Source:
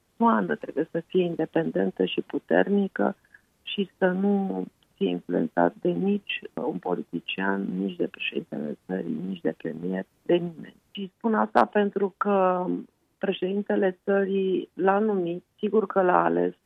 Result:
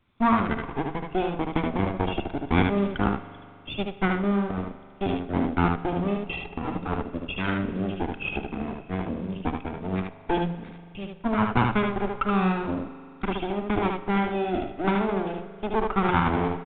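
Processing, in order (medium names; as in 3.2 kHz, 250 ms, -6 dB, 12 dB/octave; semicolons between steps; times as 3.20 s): comb filter that takes the minimum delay 0.83 ms; delay 75 ms -4 dB; on a send at -12.5 dB: reverberation RT60 2.4 s, pre-delay 41 ms; on the sum: µ-law 64 kbps 8 kHz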